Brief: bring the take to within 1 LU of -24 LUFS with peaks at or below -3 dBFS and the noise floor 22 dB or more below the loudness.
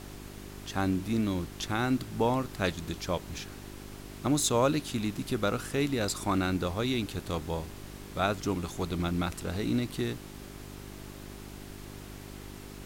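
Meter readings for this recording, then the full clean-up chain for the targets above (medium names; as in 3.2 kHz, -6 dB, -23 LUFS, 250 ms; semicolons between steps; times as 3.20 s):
hum 50 Hz; highest harmonic 400 Hz; hum level -45 dBFS; noise floor -45 dBFS; noise floor target -53 dBFS; loudness -31.0 LUFS; peak level -13.5 dBFS; loudness target -24.0 LUFS
-> de-hum 50 Hz, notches 8; noise reduction 8 dB, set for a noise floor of -45 dBFS; trim +7 dB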